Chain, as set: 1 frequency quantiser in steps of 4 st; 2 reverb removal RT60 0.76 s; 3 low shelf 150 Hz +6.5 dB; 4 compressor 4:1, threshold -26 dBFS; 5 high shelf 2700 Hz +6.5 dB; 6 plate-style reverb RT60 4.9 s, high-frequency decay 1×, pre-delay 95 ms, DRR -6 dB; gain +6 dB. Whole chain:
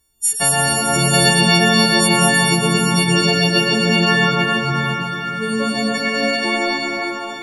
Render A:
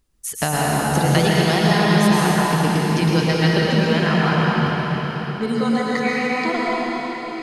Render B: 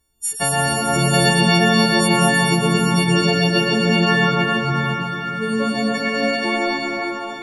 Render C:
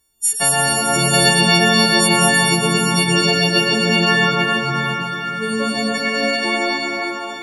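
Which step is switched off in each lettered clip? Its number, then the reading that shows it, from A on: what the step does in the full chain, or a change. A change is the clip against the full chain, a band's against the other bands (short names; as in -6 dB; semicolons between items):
1, 8 kHz band -9.5 dB; 5, 8 kHz band -5.5 dB; 3, 125 Hz band -2.5 dB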